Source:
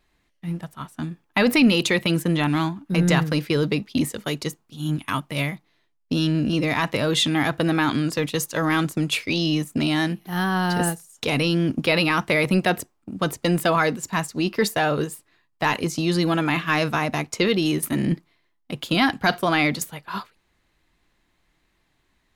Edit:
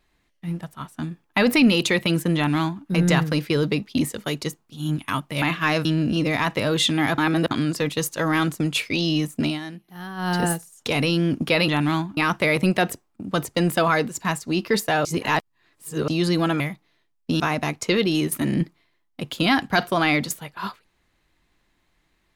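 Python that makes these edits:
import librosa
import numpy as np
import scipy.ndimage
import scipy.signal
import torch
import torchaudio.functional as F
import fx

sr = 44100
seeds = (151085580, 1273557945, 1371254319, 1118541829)

y = fx.edit(x, sr, fx.duplicate(start_s=2.35, length_s=0.49, to_s=12.05),
    fx.swap(start_s=5.42, length_s=0.8, other_s=16.48, other_length_s=0.43),
    fx.reverse_span(start_s=7.55, length_s=0.33),
    fx.fade_down_up(start_s=9.82, length_s=0.86, db=-12.0, fade_s=0.15),
    fx.reverse_span(start_s=14.93, length_s=1.03), tone=tone)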